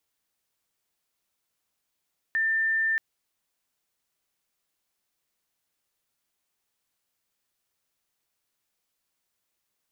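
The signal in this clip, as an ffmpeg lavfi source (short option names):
-f lavfi -i "aevalsrc='0.0794*sin(2*PI*1790*t)':d=0.63:s=44100"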